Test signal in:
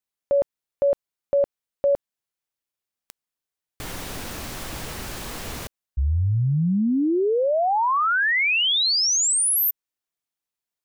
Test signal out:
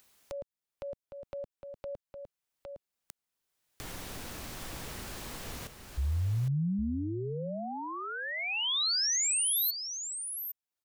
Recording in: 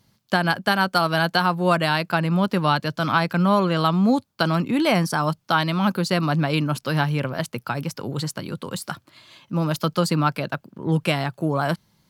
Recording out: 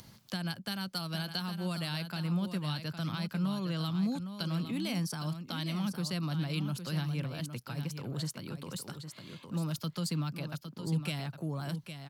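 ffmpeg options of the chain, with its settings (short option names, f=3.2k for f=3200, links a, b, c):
-filter_complex "[0:a]acrossover=split=210|3000[a][b][c];[b]acompressor=threshold=-30dB:ratio=6:attack=0.45:release=279:knee=2.83:detection=peak[d];[a][d][c]amix=inputs=3:normalize=0,aecho=1:1:810:0.355,acompressor=mode=upward:threshold=-29dB:ratio=2.5:attack=2.5:release=819:knee=2.83:detection=peak,volume=-8.5dB"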